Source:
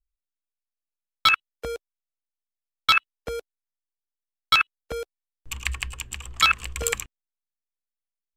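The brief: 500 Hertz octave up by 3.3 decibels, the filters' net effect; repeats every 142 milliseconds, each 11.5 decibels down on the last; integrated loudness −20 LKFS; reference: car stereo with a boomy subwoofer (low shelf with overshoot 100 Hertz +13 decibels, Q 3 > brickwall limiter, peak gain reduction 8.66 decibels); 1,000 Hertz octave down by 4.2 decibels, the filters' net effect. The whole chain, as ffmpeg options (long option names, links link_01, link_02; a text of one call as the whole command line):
ffmpeg -i in.wav -af "lowshelf=frequency=100:width_type=q:width=3:gain=13,equalizer=frequency=500:width_type=o:gain=5.5,equalizer=frequency=1000:width_type=o:gain=-7.5,aecho=1:1:142|284|426:0.266|0.0718|0.0194,volume=5dB,alimiter=limit=-7dB:level=0:latency=1" out.wav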